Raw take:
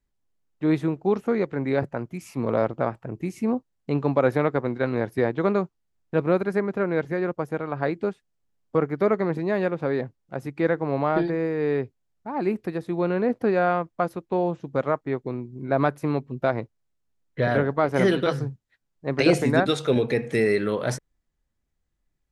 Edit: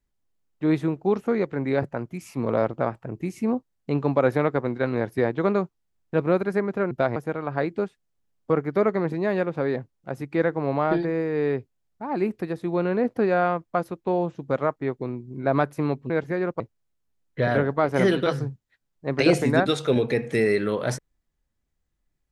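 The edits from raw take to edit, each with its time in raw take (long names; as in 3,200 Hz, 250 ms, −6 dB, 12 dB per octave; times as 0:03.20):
0:06.91–0:07.41: swap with 0:16.35–0:16.60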